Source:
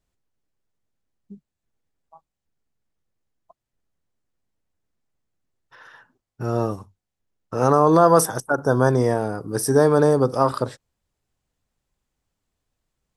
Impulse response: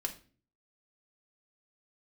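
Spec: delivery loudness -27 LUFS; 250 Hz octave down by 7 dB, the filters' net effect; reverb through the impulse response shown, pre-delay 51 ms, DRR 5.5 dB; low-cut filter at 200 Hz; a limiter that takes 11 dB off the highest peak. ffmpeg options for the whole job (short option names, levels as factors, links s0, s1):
-filter_complex "[0:a]highpass=200,equalizer=f=250:t=o:g=-8,alimiter=limit=0.168:level=0:latency=1,asplit=2[s0][s1];[1:a]atrim=start_sample=2205,adelay=51[s2];[s1][s2]afir=irnorm=-1:irlink=0,volume=0.473[s3];[s0][s3]amix=inputs=2:normalize=0,volume=0.891"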